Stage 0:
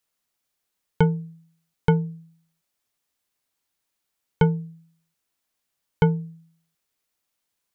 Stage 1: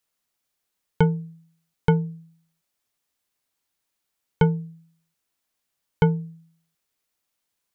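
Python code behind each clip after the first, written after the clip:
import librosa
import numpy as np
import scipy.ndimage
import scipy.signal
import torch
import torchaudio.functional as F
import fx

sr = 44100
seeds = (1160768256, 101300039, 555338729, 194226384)

y = x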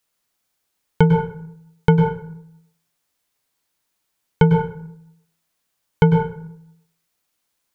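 y = fx.rev_plate(x, sr, seeds[0], rt60_s=0.73, hf_ratio=0.55, predelay_ms=90, drr_db=5.0)
y = F.gain(torch.from_numpy(y), 4.5).numpy()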